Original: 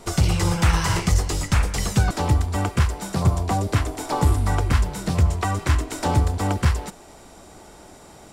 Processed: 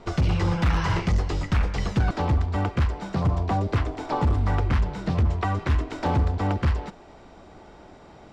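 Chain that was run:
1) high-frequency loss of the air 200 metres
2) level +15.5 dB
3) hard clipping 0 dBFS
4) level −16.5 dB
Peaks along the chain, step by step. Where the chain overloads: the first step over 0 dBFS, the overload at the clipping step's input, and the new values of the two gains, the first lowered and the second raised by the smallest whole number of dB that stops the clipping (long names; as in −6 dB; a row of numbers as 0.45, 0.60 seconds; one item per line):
−6.5, +9.0, 0.0, −16.5 dBFS
step 2, 9.0 dB
step 2 +6.5 dB, step 4 −7.5 dB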